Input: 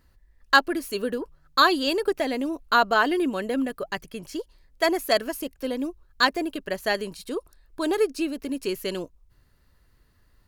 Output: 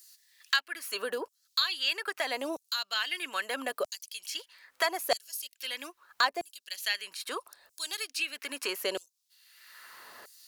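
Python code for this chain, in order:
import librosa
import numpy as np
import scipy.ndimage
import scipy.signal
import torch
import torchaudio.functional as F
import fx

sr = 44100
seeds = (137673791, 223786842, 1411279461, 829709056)

y = fx.low_shelf(x, sr, hz=440.0, db=4.5)
y = fx.filter_lfo_highpass(y, sr, shape='saw_down', hz=0.78, low_hz=580.0, high_hz=7200.0, q=1.5)
y = fx.band_squash(y, sr, depth_pct=70)
y = y * librosa.db_to_amplitude(-1.5)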